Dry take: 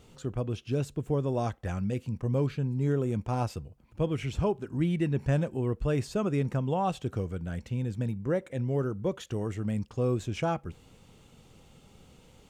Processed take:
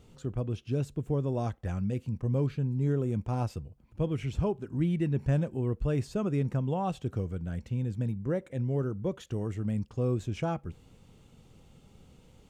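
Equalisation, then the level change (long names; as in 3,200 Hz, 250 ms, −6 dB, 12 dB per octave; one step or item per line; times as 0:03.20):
low-shelf EQ 370 Hz +6 dB
−5.0 dB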